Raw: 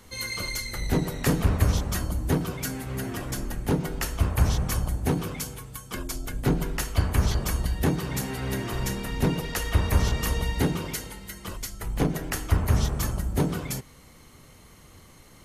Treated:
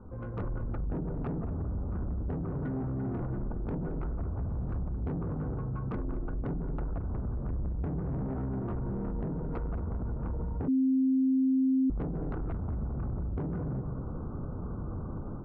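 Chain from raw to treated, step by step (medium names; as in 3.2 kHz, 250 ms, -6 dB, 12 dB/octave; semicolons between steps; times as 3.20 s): Chebyshev low-pass 1.5 kHz, order 8; tilt shelf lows +7 dB, about 720 Hz; compression 10:1, threshold -31 dBFS, peak gain reduction 21.5 dB; 4.46–4.89 s: overload inside the chain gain 33 dB; 7.47–8.34 s: bass shelf 120 Hz +7.5 dB; saturation -34.5 dBFS, distortion -10 dB; level rider gain up to 11 dB; filtered feedback delay 223 ms, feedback 29%, low-pass 1.1 kHz, level -9 dB; peak limiter -28.5 dBFS, peak gain reduction 8 dB; 10.68–11.90 s: bleep 263 Hz -22.5 dBFS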